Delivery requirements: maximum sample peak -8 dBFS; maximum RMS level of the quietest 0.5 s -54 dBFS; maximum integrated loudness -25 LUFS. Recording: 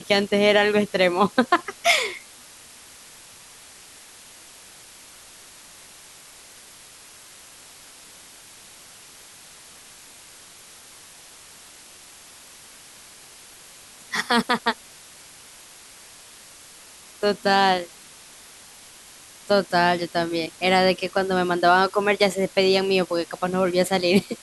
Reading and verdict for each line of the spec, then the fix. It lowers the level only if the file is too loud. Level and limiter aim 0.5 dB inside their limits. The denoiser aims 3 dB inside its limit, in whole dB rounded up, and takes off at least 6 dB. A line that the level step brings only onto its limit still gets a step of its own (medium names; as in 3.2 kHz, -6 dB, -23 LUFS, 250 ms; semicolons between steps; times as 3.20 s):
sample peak -5.0 dBFS: fail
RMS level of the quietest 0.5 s -47 dBFS: fail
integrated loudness -21.0 LUFS: fail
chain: noise reduction 6 dB, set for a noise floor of -47 dBFS; trim -4.5 dB